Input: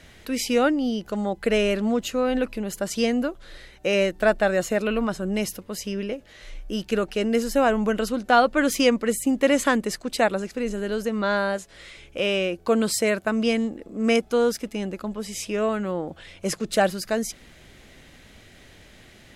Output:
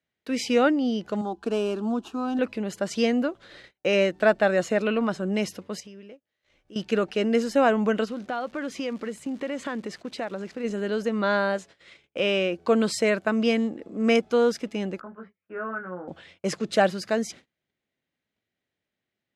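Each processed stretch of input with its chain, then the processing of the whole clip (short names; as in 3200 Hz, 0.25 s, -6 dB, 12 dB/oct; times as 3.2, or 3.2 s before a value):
1.21–2.39 median filter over 9 samples + fixed phaser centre 540 Hz, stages 6
5.8–6.76 block floating point 7-bit + compressor 4:1, threshold -43 dBFS
8.04–10.63 compressor 3:1, threshold -30 dBFS + high shelf 5400 Hz -7 dB + crackle 340/s -40 dBFS
15–16.08 ladder low-pass 1600 Hz, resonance 75% + doubler 22 ms -3 dB
whole clip: Bessel low-pass 5200 Hz, order 2; gate -43 dBFS, range -34 dB; HPF 120 Hz 12 dB/oct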